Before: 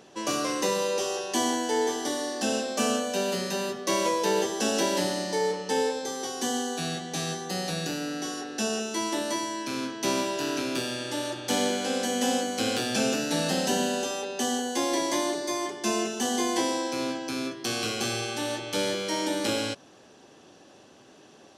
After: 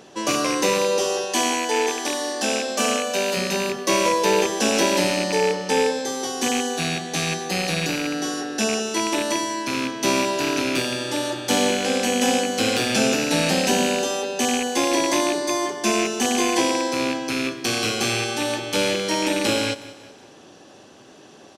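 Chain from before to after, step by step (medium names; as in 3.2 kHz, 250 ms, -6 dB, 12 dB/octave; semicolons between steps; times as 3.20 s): rattle on loud lows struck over -36 dBFS, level -22 dBFS; 1.25–3.37 s: bass shelf 240 Hz -10.5 dB; feedback delay 184 ms, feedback 45%, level -17.5 dB; trim +6 dB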